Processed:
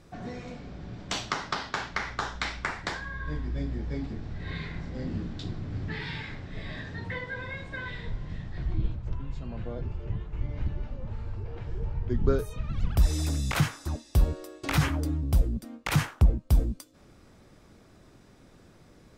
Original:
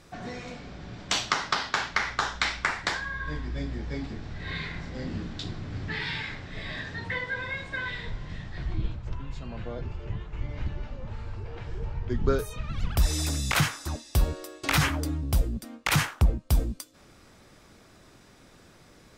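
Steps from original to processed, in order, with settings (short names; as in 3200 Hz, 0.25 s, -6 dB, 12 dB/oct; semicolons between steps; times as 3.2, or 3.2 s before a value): tilt shelf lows +4 dB, about 730 Hz; gain -2.5 dB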